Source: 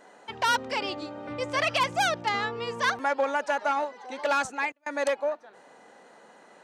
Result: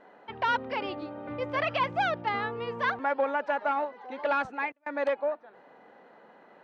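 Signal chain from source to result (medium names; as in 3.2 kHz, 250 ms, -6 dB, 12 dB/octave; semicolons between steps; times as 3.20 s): distance through air 360 m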